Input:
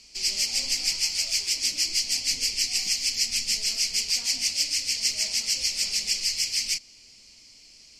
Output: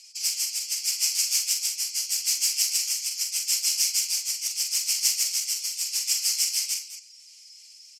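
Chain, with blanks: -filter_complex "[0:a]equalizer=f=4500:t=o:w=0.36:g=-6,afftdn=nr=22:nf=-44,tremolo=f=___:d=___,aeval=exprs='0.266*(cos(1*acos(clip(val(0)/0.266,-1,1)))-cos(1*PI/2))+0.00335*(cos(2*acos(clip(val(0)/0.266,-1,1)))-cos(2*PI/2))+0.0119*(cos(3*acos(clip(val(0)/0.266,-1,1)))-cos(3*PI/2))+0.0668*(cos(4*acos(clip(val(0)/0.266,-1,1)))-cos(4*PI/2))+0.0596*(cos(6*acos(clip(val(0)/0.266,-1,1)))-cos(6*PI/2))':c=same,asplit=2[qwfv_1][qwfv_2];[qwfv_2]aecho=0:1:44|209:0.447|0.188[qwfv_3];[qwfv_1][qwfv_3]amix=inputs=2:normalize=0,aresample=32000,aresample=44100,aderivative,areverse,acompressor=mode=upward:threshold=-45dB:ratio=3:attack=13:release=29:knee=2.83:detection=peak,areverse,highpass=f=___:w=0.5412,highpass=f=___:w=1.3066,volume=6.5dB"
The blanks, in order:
0.79, 0.49, 120, 120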